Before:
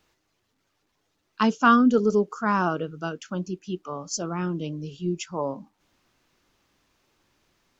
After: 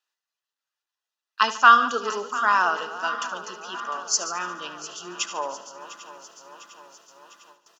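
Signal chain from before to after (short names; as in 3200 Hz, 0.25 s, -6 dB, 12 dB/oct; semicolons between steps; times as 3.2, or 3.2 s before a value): regenerating reverse delay 0.351 s, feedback 77%, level -14 dB; HPF 1100 Hz 12 dB/oct; gate with hold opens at -48 dBFS; Butterworth band-stop 2200 Hz, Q 6.7; feedback echo 73 ms, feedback 59%, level -14 dB; gain +8 dB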